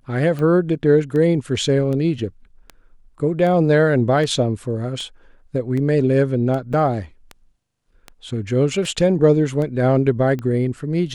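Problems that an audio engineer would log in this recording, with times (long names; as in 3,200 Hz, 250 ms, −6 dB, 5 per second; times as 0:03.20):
scratch tick 78 rpm −17 dBFS
0:06.73–0:06.74: drop-out 5.1 ms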